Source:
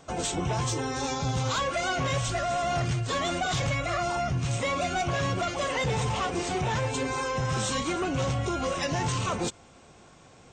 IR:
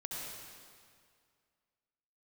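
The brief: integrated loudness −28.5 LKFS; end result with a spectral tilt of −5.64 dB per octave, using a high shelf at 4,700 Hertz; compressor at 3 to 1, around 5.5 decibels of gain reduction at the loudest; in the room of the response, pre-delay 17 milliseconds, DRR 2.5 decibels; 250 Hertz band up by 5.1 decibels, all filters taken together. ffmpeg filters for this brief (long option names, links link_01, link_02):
-filter_complex "[0:a]equalizer=frequency=250:width_type=o:gain=7,highshelf=frequency=4700:gain=-7,acompressor=threshold=-30dB:ratio=3,asplit=2[link_01][link_02];[1:a]atrim=start_sample=2205,adelay=17[link_03];[link_02][link_03]afir=irnorm=-1:irlink=0,volume=-3.5dB[link_04];[link_01][link_04]amix=inputs=2:normalize=0,volume=1.5dB"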